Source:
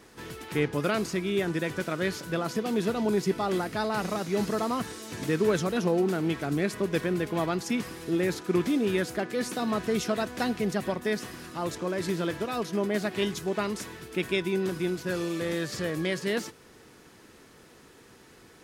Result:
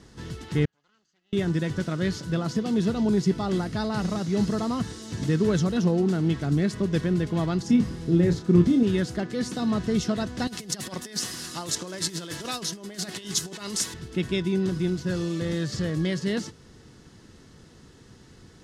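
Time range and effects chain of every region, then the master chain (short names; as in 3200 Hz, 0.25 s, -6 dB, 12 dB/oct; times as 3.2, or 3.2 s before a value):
0.65–1.33 minimum comb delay 0.65 ms + band-pass 6700 Hz, Q 6.8 + air absorption 460 m
7.62–8.83 tilt shelf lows +4 dB, about 750 Hz + doubler 29 ms -7.5 dB
10.47–13.94 negative-ratio compressor -32 dBFS, ratio -0.5 + RIAA curve recording
whole clip: LPF 5200 Hz 12 dB/oct; tone controls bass +14 dB, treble +11 dB; notch 2400 Hz, Q 9.2; gain -3 dB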